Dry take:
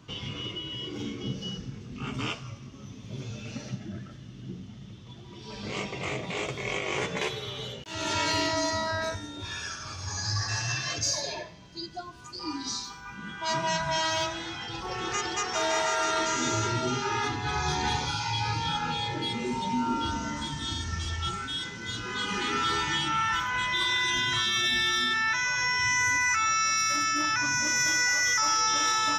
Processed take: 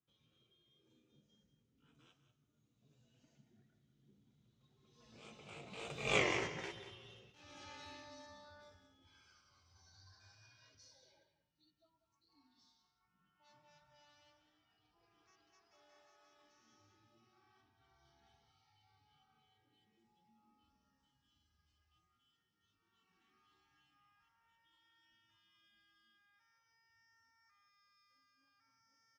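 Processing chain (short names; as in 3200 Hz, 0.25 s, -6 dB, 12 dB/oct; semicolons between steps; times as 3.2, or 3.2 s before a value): Doppler pass-by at 6.19, 31 m/s, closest 1.7 m; echo 0.19 s -11.5 dB; gain +1.5 dB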